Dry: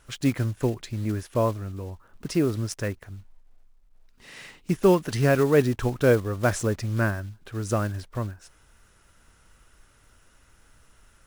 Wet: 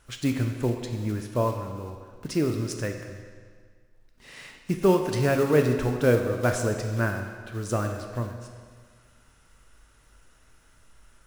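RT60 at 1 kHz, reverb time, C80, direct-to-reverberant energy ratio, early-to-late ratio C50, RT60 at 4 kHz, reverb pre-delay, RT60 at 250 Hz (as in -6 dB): 1.8 s, 1.8 s, 7.0 dB, 4.0 dB, 5.5 dB, 1.6 s, 8 ms, 1.8 s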